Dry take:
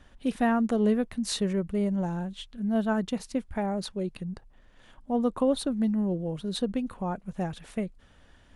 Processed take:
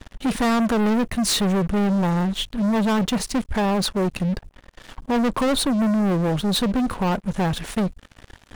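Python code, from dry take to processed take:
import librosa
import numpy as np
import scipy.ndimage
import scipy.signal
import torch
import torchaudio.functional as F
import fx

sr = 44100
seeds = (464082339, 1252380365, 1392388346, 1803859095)

y = fx.leveller(x, sr, passes=5)
y = y * librosa.db_to_amplitude(-2.0)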